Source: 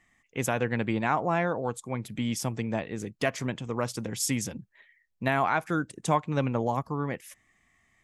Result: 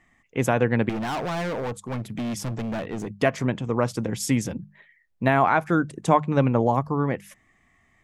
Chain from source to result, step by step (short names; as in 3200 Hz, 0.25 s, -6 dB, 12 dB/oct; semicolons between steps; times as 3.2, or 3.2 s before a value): high shelf 2300 Hz -9.5 dB; notches 50/100/150/200 Hz; 0.89–3.19 overloaded stage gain 33.5 dB; gain +7.5 dB